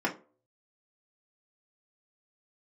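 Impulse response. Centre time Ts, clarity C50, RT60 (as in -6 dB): 13 ms, 14.0 dB, 0.40 s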